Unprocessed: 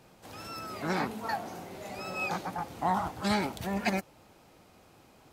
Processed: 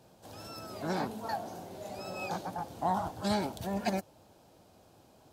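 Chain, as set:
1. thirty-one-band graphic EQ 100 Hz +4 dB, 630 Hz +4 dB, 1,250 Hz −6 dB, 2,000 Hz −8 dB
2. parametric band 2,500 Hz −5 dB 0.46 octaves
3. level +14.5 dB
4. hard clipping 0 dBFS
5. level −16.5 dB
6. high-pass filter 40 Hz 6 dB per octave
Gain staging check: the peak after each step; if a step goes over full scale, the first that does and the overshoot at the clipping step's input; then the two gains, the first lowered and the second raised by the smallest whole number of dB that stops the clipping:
−15.0, −16.0, −1.5, −1.5, −18.0, −18.0 dBFS
no step passes full scale

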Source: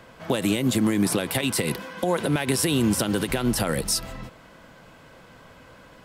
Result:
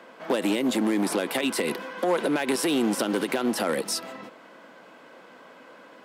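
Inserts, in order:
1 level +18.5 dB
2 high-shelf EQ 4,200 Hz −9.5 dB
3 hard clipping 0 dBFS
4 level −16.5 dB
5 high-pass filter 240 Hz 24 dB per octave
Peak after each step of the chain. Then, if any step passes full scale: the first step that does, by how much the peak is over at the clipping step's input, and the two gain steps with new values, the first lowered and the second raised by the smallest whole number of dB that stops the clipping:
+6.5, +6.0, 0.0, −16.5, −13.0 dBFS
step 1, 6.0 dB
step 1 +12.5 dB, step 4 −10.5 dB

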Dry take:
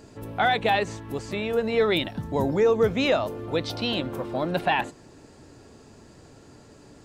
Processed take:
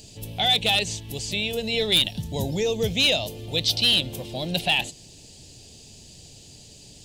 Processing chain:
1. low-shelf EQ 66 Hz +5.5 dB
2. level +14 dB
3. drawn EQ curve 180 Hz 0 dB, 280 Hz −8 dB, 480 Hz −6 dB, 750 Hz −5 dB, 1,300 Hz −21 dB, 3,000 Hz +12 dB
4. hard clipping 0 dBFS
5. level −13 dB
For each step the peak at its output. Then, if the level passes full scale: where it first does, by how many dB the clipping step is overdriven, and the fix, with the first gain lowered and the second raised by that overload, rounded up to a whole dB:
−11.0, +3.0, +8.5, 0.0, −13.0 dBFS
step 2, 8.5 dB
step 2 +5 dB, step 5 −4 dB

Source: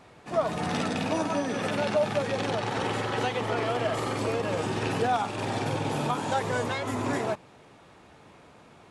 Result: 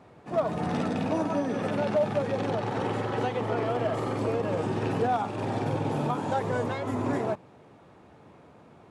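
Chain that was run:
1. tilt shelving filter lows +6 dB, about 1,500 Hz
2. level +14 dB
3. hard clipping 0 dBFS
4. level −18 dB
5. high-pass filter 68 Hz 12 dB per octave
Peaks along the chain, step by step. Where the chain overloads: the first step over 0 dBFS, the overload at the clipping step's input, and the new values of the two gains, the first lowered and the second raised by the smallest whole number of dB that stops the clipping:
−9.0, +5.0, 0.0, −18.0, −16.0 dBFS
step 2, 5.0 dB
step 2 +9 dB, step 4 −13 dB

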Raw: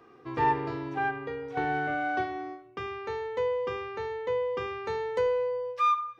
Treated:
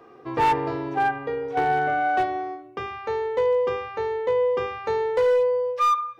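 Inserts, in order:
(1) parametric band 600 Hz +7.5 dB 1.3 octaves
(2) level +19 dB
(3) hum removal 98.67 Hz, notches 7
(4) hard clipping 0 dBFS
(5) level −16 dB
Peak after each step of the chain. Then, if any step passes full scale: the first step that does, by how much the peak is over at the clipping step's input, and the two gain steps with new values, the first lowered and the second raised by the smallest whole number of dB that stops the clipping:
−11.0, +8.0, +7.5, 0.0, −16.0 dBFS
step 2, 7.5 dB
step 2 +11 dB, step 5 −8 dB

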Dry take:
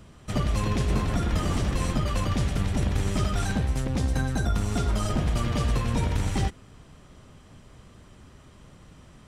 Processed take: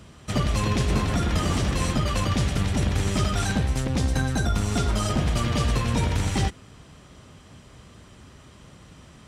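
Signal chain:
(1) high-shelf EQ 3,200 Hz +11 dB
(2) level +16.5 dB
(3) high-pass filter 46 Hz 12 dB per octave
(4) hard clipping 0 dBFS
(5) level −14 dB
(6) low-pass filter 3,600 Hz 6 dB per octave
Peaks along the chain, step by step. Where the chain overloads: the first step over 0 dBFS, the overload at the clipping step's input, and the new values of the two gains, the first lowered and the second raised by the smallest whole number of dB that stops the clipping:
−12.5, +4.0, +4.5, 0.0, −14.0, −14.0 dBFS
step 2, 4.5 dB
step 2 +11.5 dB, step 5 −9 dB

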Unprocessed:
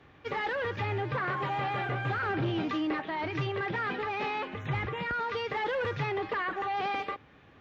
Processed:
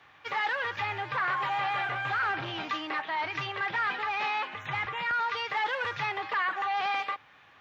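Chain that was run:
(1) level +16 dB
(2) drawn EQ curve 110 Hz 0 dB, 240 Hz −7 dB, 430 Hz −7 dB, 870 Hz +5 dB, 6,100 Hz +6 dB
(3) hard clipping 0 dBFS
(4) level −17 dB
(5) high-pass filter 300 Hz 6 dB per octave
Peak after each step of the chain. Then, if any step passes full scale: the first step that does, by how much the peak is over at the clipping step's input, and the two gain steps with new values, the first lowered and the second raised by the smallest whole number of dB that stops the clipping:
−6.5, −3.5, −3.5, −20.5, −21.0 dBFS
no step passes full scale

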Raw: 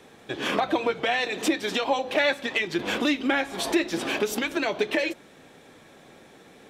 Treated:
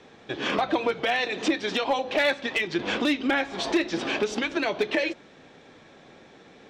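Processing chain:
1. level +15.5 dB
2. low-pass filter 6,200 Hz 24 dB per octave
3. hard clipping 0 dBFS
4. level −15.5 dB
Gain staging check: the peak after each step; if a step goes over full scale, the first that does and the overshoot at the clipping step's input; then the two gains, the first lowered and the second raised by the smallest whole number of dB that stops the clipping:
+6.0, +6.0, 0.0, −15.5 dBFS
step 1, 6.0 dB
step 1 +9.5 dB, step 4 −9.5 dB

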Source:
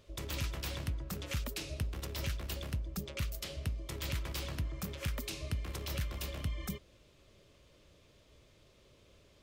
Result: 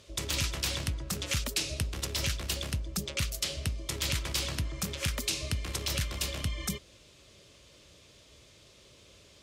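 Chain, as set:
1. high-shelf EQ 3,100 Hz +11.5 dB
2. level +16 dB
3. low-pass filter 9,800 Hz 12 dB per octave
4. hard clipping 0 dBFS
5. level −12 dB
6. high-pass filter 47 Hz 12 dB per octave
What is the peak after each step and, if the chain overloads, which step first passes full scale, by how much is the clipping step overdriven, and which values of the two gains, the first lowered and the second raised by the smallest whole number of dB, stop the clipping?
−16.5, −0.5, −2.5, −2.5, −14.5, −15.0 dBFS
no step passes full scale

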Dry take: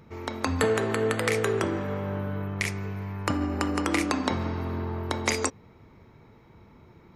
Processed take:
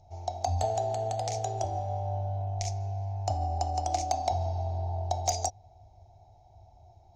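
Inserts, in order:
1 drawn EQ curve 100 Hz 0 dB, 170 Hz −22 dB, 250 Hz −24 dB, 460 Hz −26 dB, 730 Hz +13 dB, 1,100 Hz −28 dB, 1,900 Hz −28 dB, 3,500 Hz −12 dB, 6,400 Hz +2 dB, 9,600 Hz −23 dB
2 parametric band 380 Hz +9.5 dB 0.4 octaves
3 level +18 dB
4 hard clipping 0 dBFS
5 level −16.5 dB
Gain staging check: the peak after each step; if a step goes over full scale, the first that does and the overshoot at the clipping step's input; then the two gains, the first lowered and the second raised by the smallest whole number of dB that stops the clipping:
−13.5, −13.0, +5.0, 0.0, −16.5 dBFS
step 3, 5.0 dB
step 3 +13 dB, step 5 −11.5 dB

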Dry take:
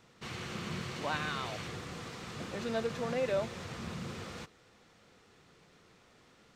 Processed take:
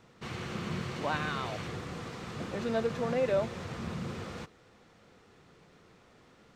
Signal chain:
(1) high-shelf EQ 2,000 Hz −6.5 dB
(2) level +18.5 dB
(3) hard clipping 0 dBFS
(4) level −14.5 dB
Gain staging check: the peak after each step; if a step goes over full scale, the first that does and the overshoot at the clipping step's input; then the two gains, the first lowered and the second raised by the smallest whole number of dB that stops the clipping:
−22.5, −4.0, −4.0, −18.5 dBFS
no step passes full scale

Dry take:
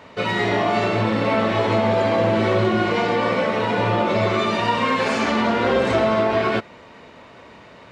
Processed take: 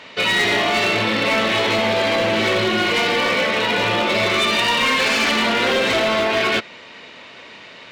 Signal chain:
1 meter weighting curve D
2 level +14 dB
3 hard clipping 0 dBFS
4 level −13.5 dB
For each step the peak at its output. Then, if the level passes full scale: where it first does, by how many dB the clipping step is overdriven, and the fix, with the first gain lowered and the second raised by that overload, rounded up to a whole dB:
−4.5, +9.5, 0.0, −13.5 dBFS
step 2, 9.5 dB
step 2 +4 dB, step 4 −3.5 dB

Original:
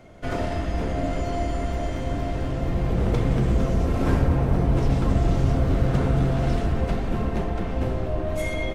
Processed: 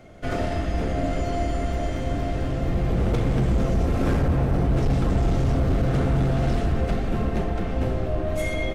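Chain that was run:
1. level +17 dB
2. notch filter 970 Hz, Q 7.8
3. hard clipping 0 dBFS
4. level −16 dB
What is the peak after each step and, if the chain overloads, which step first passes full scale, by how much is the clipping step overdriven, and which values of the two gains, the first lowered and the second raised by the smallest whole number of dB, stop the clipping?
+9.5, +9.5, 0.0, −16.0 dBFS
step 1, 9.5 dB
step 1 +7 dB, step 4 −6 dB

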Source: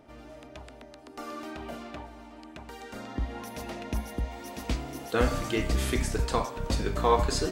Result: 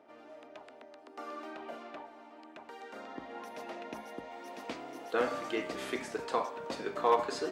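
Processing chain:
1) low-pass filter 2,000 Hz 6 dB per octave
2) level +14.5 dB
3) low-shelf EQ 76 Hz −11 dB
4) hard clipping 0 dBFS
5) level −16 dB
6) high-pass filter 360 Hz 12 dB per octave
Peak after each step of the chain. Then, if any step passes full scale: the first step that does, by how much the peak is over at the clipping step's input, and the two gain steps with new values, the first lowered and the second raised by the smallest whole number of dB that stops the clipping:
−10.0, +4.5, +4.0, 0.0, −16.0, −13.5 dBFS
step 2, 4.0 dB
step 2 +10.5 dB, step 5 −12 dB

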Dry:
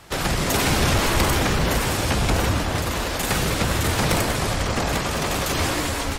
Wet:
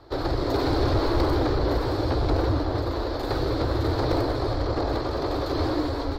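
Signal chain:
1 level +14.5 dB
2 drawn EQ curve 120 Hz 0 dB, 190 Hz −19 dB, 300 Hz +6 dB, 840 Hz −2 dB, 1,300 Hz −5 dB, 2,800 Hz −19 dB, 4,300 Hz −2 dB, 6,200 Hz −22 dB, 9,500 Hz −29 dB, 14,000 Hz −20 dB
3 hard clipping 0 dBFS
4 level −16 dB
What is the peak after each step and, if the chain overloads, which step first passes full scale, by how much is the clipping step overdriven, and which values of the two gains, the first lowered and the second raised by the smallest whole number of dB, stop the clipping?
+2.5, +4.5, 0.0, −16.0 dBFS
step 1, 4.5 dB
step 1 +9.5 dB, step 4 −11 dB

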